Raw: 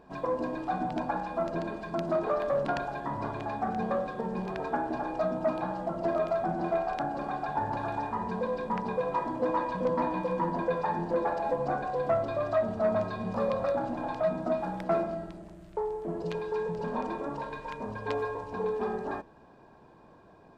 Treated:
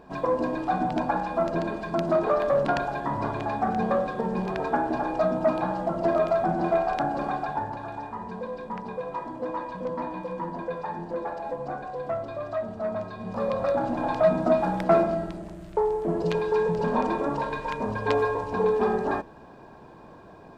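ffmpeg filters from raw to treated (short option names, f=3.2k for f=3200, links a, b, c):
-af "volume=16.5dB,afade=t=out:st=7.28:d=0.48:silence=0.375837,afade=t=in:st=13.16:d=1.11:silence=0.281838"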